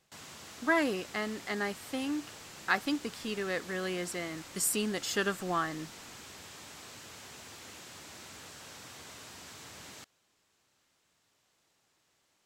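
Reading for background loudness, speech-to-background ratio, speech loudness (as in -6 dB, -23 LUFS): -47.0 LUFS, 14.0 dB, -33.0 LUFS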